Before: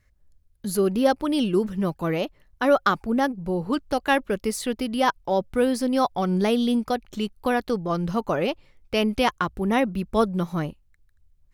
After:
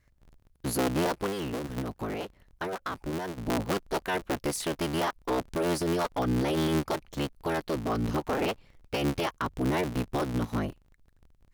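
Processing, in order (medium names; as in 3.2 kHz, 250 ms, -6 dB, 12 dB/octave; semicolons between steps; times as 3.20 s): cycle switcher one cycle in 3, inverted; peak limiter -17.5 dBFS, peak gain reduction 10 dB; 1.26–3.38 s: compression, threshold -28 dBFS, peak gain reduction 7 dB; trim -2.5 dB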